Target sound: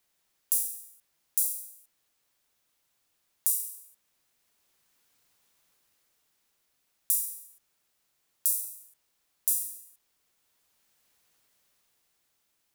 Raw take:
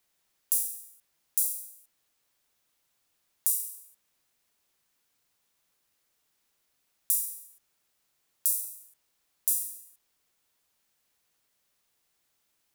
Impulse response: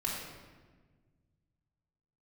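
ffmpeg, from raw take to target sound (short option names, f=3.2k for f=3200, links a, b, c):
-af "dynaudnorm=f=140:g=17:m=5.5dB"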